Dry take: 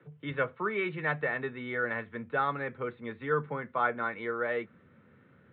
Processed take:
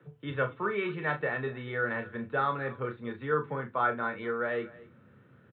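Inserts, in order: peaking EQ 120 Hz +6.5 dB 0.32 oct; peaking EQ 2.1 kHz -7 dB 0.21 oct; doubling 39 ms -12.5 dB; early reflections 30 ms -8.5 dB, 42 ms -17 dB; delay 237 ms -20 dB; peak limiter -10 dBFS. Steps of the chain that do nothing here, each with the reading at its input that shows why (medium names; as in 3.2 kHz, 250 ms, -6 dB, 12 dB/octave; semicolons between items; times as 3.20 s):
peak limiter -10 dBFS: peak at its input -15.0 dBFS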